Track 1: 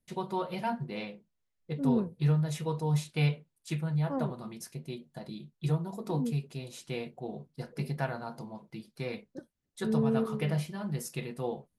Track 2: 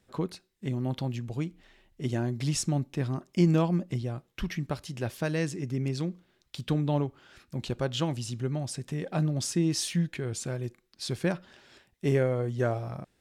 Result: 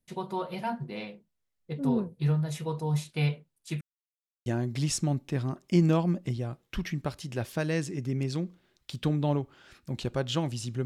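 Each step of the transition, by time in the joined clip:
track 1
0:03.81–0:04.46: silence
0:04.46: continue with track 2 from 0:02.11

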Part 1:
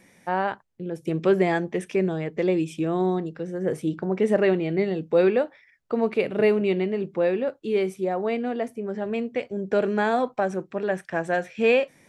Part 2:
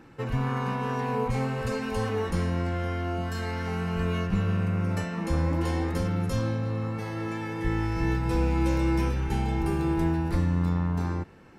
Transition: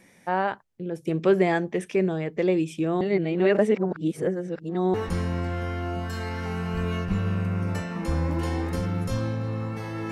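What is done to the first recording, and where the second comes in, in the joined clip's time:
part 1
0:03.01–0:04.94: reverse
0:04.94: continue with part 2 from 0:02.16

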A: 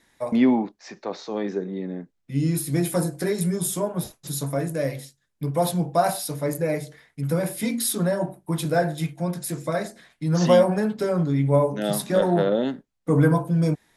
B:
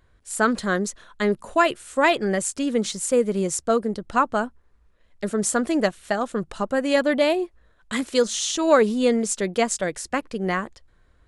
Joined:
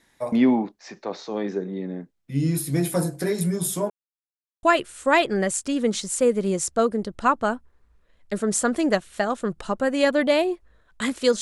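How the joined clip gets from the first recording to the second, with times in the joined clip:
A
0:03.90–0:04.63: silence
0:04.63: continue with B from 0:01.54

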